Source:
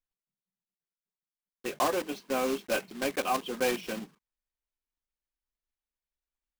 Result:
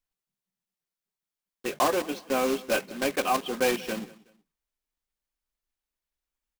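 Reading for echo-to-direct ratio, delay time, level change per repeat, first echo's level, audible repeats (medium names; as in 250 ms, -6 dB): -20.0 dB, 186 ms, -10.0 dB, -20.5 dB, 2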